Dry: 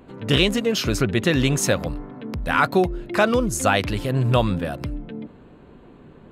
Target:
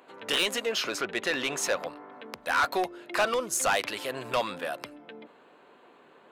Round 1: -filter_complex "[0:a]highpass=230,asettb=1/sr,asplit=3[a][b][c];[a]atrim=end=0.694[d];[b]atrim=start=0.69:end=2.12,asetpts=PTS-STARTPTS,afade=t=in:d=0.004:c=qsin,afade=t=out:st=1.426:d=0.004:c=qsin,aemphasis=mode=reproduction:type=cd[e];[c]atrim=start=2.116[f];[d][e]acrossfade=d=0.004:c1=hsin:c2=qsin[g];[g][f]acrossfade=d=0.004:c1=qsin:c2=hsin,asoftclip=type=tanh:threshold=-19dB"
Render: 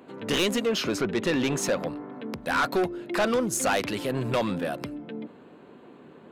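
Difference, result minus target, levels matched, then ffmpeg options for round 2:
250 Hz band +10.0 dB
-filter_complex "[0:a]highpass=640,asettb=1/sr,asplit=3[a][b][c];[a]atrim=end=0.694[d];[b]atrim=start=0.69:end=2.12,asetpts=PTS-STARTPTS,afade=t=in:d=0.004:c=qsin,afade=t=out:st=1.426:d=0.004:c=qsin,aemphasis=mode=reproduction:type=cd[e];[c]atrim=start=2.116[f];[d][e]acrossfade=d=0.004:c1=hsin:c2=qsin[g];[g][f]acrossfade=d=0.004:c1=qsin:c2=hsin,asoftclip=type=tanh:threshold=-19dB"

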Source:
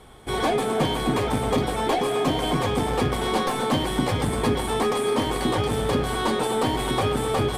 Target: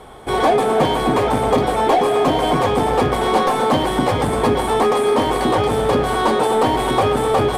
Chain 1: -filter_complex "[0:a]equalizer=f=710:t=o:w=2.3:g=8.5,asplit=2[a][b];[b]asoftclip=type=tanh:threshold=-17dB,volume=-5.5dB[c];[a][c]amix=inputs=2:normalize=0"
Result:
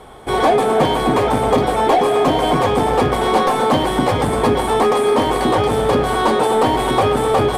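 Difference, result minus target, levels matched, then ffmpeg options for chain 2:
soft clip: distortion -5 dB
-filter_complex "[0:a]equalizer=f=710:t=o:w=2.3:g=8.5,asplit=2[a][b];[b]asoftclip=type=tanh:threshold=-25dB,volume=-5.5dB[c];[a][c]amix=inputs=2:normalize=0"

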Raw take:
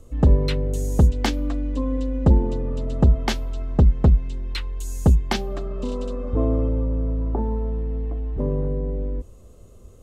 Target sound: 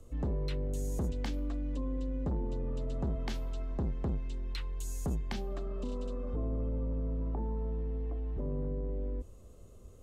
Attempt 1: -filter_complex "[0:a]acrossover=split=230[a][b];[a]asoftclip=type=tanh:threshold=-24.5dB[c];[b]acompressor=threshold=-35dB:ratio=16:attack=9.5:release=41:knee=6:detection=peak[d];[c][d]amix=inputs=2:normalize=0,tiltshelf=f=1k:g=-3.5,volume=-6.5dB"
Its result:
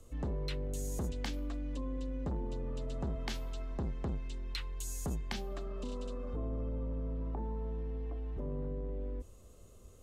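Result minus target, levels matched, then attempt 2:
1000 Hz band +2.5 dB
-filter_complex "[0:a]acrossover=split=230[a][b];[a]asoftclip=type=tanh:threshold=-24.5dB[c];[b]acompressor=threshold=-35dB:ratio=16:attack=9.5:release=41:knee=6:detection=peak[d];[c][d]amix=inputs=2:normalize=0,volume=-6.5dB"

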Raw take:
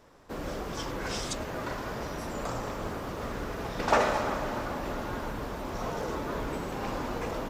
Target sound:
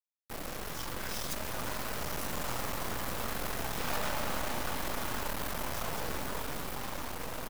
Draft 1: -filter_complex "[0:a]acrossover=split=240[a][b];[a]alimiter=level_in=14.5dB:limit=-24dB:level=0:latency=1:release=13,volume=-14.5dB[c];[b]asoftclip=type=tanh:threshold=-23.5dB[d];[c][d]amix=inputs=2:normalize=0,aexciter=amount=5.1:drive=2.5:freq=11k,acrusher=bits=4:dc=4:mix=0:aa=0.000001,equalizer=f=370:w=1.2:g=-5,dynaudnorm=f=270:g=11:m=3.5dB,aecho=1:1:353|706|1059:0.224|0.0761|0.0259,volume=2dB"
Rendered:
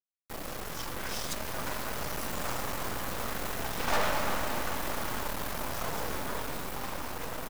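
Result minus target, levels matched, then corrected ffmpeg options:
soft clip: distortion -6 dB
-filter_complex "[0:a]acrossover=split=240[a][b];[a]alimiter=level_in=14.5dB:limit=-24dB:level=0:latency=1:release=13,volume=-14.5dB[c];[b]asoftclip=type=tanh:threshold=-33.5dB[d];[c][d]amix=inputs=2:normalize=0,aexciter=amount=5.1:drive=2.5:freq=11k,acrusher=bits=4:dc=4:mix=0:aa=0.000001,equalizer=f=370:w=1.2:g=-5,dynaudnorm=f=270:g=11:m=3.5dB,aecho=1:1:353|706|1059:0.224|0.0761|0.0259,volume=2dB"

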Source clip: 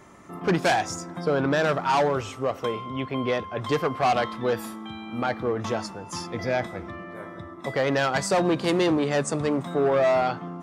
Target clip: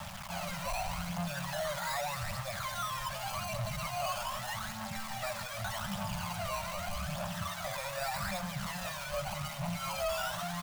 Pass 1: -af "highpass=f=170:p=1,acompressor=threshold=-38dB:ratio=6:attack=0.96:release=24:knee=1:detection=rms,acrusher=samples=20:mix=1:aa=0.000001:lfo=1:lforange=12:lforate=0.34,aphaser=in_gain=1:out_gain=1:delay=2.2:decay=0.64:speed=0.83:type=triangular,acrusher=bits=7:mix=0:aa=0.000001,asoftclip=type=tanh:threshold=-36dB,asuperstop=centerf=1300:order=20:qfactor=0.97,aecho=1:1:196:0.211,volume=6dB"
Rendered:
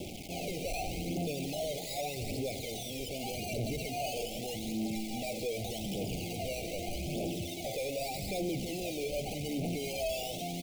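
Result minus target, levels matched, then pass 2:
1000 Hz band -6.0 dB
-af "highpass=f=170:p=1,acompressor=threshold=-38dB:ratio=6:attack=0.96:release=24:knee=1:detection=rms,acrusher=samples=20:mix=1:aa=0.000001:lfo=1:lforange=12:lforate=0.34,aphaser=in_gain=1:out_gain=1:delay=2.2:decay=0.64:speed=0.83:type=triangular,acrusher=bits=7:mix=0:aa=0.000001,asoftclip=type=tanh:threshold=-36dB,asuperstop=centerf=340:order=20:qfactor=0.97,aecho=1:1:196:0.211,volume=6dB"

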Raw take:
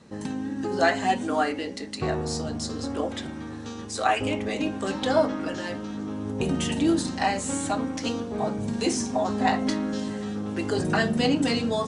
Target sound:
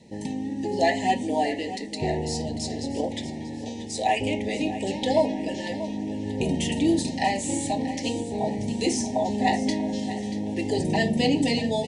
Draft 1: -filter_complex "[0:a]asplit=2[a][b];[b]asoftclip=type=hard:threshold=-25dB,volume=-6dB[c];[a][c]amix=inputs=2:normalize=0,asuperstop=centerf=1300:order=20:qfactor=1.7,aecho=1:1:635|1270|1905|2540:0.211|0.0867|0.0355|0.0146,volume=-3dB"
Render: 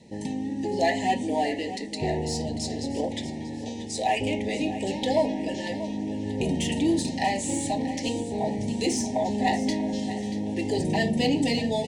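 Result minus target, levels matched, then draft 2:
hard clip: distortion +19 dB
-filter_complex "[0:a]asplit=2[a][b];[b]asoftclip=type=hard:threshold=-13.5dB,volume=-6dB[c];[a][c]amix=inputs=2:normalize=0,asuperstop=centerf=1300:order=20:qfactor=1.7,aecho=1:1:635|1270|1905|2540:0.211|0.0867|0.0355|0.0146,volume=-3dB"

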